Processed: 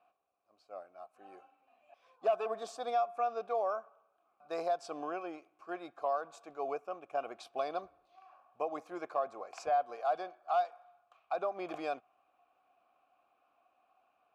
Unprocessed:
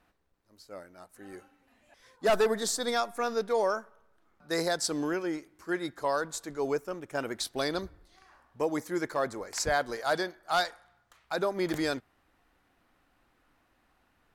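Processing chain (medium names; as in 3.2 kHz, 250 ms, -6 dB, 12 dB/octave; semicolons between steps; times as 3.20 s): dynamic bell 4.1 kHz, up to -6 dB, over -55 dBFS, Q 6; vowel filter a; compression 2:1, threshold -39 dBFS, peak gain reduction 8 dB; trim +7.5 dB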